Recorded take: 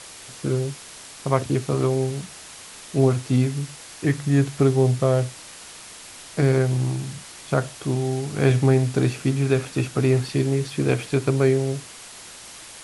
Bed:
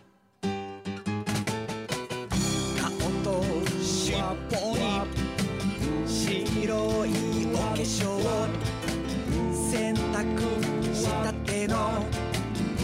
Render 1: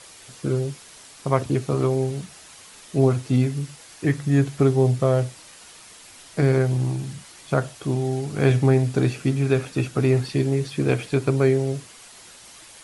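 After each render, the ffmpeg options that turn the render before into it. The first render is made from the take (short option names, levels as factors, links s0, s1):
-af "afftdn=nr=6:nf=-42"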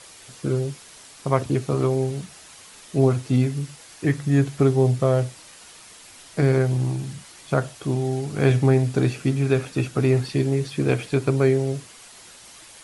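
-af anull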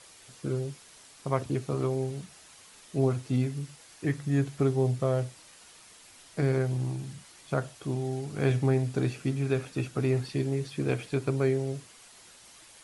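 -af "volume=0.422"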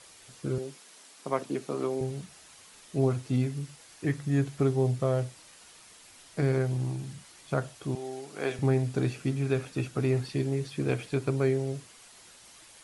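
-filter_complex "[0:a]asettb=1/sr,asplit=3[s0][s1][s2];[s0]atrim=end=0.584[s3];[s1]atrim=start=0.58:end=2.01,asetpts=PTS-STARTPTS,afade=t=in:d=0.004:c=qsin,afade=t=out:st=1.426:d=0.004:c=qsin,highpass=f=190:w=0.5412,highpass=f=190:w=1.3066[s4];[s2]atrim=start=2.006[s5];[s3][s4]acrossfade=d=0.004:c1=hsin:c2=qsin[s6];[s6][s5]acrossfade=d=0.004:c1=qsin:c2=hsin,asettb=1/sr,asplit=3[s7][s8][s9];[s7]atrim=end=7.954[s10];[s8]atrim=start=7.95:end=8.59,asetpts=PTS-STARTPTS,afade=t=in:d=0.004:c=qsin,afade=t=out:st=0.636:d=0.004:c=qsin,highpass=380[s11];[s9]atrim=start=8.586[s12];[s10][s11]acrossfade=d=0.004:c1=hsin:c2=qsin[s13];[s13][s12]acrossfade=d=0.004:c1=qsin:c2=hsin"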